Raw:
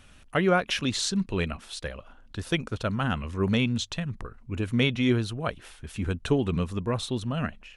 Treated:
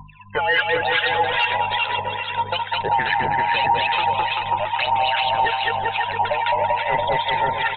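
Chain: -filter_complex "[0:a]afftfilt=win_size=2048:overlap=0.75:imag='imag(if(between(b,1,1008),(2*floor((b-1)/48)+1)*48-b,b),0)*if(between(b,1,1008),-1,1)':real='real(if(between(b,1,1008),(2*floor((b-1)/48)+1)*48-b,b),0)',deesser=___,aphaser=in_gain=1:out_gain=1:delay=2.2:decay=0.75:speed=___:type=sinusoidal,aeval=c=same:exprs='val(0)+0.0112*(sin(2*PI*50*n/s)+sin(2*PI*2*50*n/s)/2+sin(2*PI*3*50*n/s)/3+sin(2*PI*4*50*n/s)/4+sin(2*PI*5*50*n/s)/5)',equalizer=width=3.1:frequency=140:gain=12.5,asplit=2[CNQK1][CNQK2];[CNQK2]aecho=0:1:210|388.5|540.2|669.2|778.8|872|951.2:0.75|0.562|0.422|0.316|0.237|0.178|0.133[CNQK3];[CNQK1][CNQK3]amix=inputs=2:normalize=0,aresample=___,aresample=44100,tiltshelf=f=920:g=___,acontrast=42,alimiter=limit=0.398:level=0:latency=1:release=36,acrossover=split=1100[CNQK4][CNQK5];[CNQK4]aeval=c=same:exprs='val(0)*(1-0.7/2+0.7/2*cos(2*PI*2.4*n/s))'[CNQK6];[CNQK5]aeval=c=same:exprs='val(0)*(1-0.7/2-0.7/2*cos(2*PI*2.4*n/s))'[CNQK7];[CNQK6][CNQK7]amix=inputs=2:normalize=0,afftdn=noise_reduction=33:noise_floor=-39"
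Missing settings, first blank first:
0.85, 1, 8000, -9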